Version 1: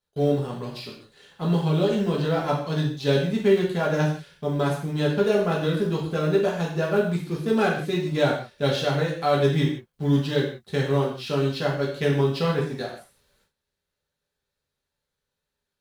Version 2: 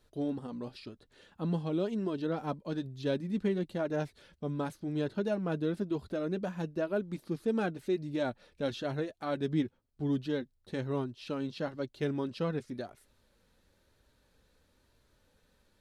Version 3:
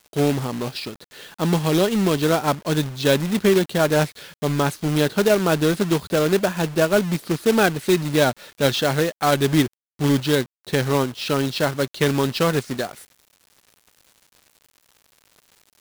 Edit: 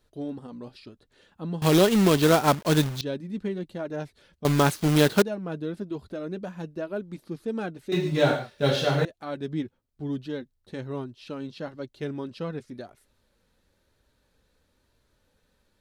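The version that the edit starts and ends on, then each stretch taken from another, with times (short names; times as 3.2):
2
1.62–3.01 from 3
4.45–5.22 from 3
7.92–9.05 from 1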